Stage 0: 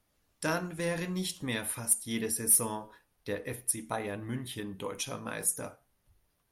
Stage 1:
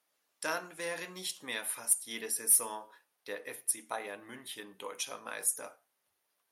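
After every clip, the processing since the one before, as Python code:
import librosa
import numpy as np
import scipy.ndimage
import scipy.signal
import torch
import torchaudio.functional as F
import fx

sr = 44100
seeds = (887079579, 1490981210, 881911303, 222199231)

y = scipy.signal.sosfilt(scipy.signal.bessel(2, 610.0, 'highpass', norm='mag', fs=sr, output='sos'), x)
y = y * 10.0 ** (-1.0 / 20.0)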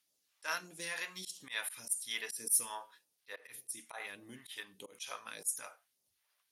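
y = fx.phaser_stages(x, sr, stages=2, low_hz=200.0, high_hz=1400.0, hz=1.7, feedback_pct=50)
y = fx.auto_swell(y, sr, attack_ms=108.0)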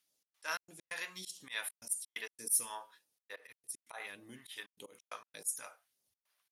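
y = fx.step_gate(x, sr, bpm=132, pattern='xx.xx.x.xxxxx', floor_db=-60.0, edge_ms=4.5)
y = y * 10.0 ** (-1.0 / 20.0)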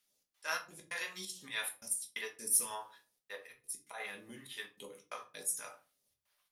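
y = fx.room_shoebox(x, sr, seeds[0], volume_m3=160.0, walls='furnished', distance_m=1.3)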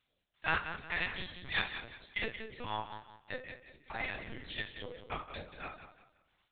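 y = fx.echo_feedback(x, sr, ms=178, feedback_pct=33, wet_db=-10)
y = fx.lpc_vocoder(y, sr, seeds[1], excitation='pitch_kept', order=10)
y = y * 10.0 ** (5.5 / 20.0)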